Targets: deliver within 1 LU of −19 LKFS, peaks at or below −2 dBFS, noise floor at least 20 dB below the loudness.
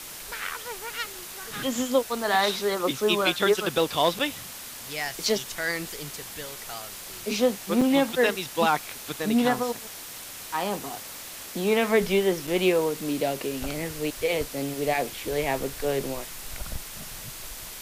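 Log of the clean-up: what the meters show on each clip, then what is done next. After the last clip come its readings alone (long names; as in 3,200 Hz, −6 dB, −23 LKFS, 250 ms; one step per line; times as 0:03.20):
number of dropouts 3; longest dropout 4.9 ms; background noise floor −40 dBFS; target noise floor −47 dBFS; integrated loudness −27.0 LKFS; sample peak −10.0 dBFS; target loudness −19.0 LKFS
→ repair the gap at 0:04.19/0:07.81/0:12.47, 4.9 ms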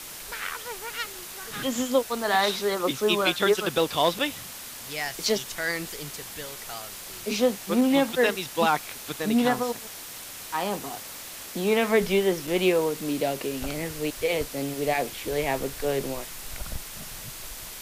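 number of dropouts 0; background noise floor −40 dBFS; target noise floor −47 dBFS
→ broadband denoise 7 dB, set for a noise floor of −40 dBFS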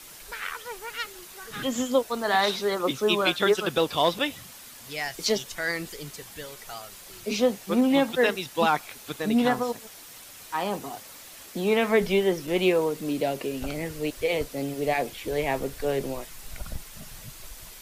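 background noise floor −46 dBFS; target noise floor −47 dBFS
→ broadband denoise 6 dB, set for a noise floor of −46 dBFS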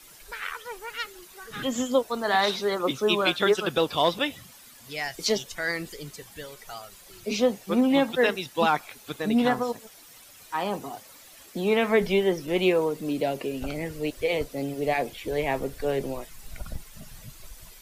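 background noise floor −50 dBFS; integrated loudness −26.5 LKFS; sample peak −10.0 dBFS; target loudness −19.0 LKFS
→ level +7.5 dB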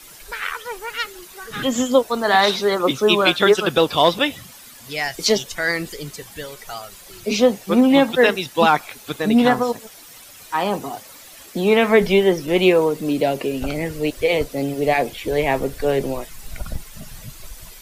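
integrated loudness −19.0 LKFS; sample peak −2.5 dBFS; background noise floor −43 dBFS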